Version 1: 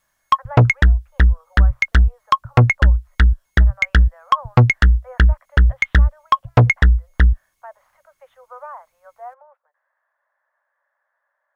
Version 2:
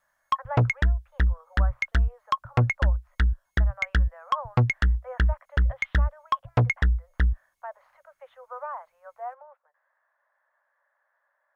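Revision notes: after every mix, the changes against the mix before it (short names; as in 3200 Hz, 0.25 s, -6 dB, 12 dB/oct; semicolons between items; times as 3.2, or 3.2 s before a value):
background -9.5 dB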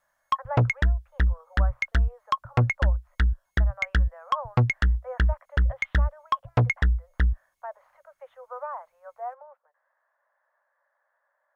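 speech: add tilt -2.5 dB/oct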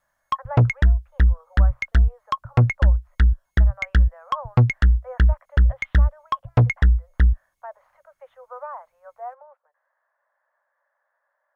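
background: add low shelf 340 Hz +6.5 dB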